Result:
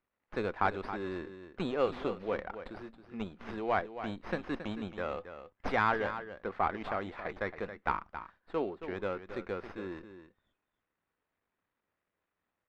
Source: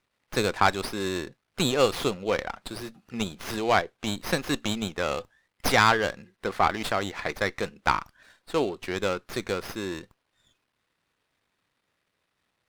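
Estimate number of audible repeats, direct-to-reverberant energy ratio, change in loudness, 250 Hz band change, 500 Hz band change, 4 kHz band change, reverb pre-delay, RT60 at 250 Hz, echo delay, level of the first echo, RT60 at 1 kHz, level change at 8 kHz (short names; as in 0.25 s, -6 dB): 1, none, -8.5 dB, -7.5 dB, -7.0 dB, -18.5 dB, none, none, 0.273 s, -11.0 dB, none, under -30 dB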